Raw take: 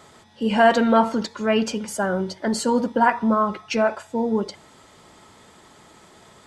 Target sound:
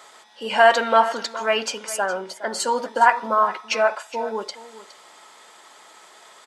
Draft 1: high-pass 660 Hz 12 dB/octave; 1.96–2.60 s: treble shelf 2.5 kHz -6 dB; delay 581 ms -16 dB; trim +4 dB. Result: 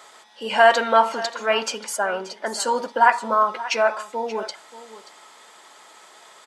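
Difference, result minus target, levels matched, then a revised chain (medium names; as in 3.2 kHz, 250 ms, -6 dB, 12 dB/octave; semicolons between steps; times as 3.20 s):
echo 167 ms late
high-pass 660 Hz 12 dB/octave; 1.96–2.60 s: treble shelf 2.5 kHz -6 dB; delay 414 ms -16 dB; trim +4 dB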